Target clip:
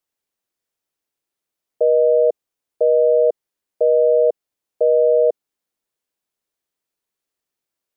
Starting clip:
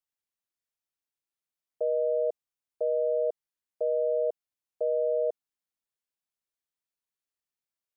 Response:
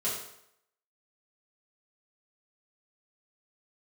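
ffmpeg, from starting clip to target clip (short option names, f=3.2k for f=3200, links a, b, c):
-af "equalizer=f=400:w=0.86:g=6.5,volume=7.5dB"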